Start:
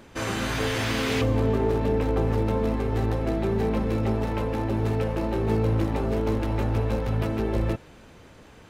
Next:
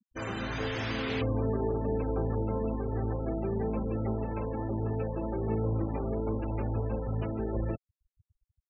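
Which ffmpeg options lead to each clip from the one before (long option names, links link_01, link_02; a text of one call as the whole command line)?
ffmpeg -i in.wav -af "afftfilt=real='re*gte(hypot(re,im),0.0316)':imag='im*gte(hypot(re,im),0.0316)':win_size=1024:overlap=0.75,volume=-6.5dB" out.wav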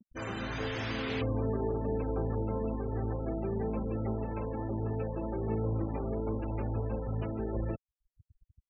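ffmpeg -i in.wav -af "acompressor=mode=upward:threshold=-44dB:ratio=2.5,anlmdn=0.00158,volume=-2dB" out.wav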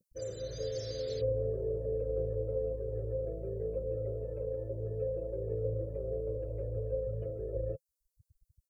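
ffmpeg -i in.wav -af "firequalizer=gain_entry='entry(150,0);entry(220,-20);entry(520,13);entry(800,-27);entry(1700,-16);entry(2700,-20);entry(4200,8);entry(8900,14)':delay=0.05:min_phase=1,volume=-4dB" out.wav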